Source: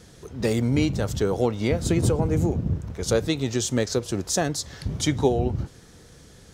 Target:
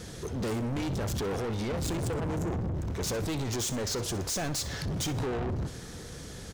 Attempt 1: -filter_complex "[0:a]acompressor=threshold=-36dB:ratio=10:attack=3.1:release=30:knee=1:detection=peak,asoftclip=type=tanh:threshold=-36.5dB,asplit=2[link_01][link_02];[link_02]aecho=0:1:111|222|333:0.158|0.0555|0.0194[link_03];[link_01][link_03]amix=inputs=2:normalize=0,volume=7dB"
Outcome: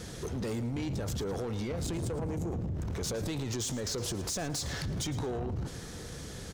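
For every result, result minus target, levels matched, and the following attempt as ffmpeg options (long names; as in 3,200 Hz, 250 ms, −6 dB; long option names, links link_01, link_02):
echo 47 ms late; downward compressor: peak gain reduction +9 dB
-filter_complex "[0:a]acompressor=threshold=-36dB:ratio=10:attack=3.1:release=30:knee=1:detection=peak,asoftclip=type=tanh:threshold=-36.5dB,asplit=2[link_01][link_02];[link_02]aecho=0:1:64|128|192:0.158|0.0555|0.0194[link_03];[link_01][link_03]amix=inputs=2:normalize=0,volume=7dB"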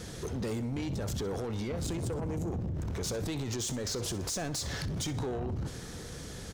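downward compressor: peak gain reduction +9 dB
-filter_complex "[0:a]acompressor=threshold=-26dB:ratio=10:attack=3.1:release=30:knee=1:detection=peak,asoftclip=type=tanh:threshold=-36.5dB,asplit=2[link_01][link_02];[link_02]aecho=0:1:64|128|192:0.158|0.0555|0.0194[link_03];[link_01][link_03]amix=inputs=2:normalize=0,volume=7dB"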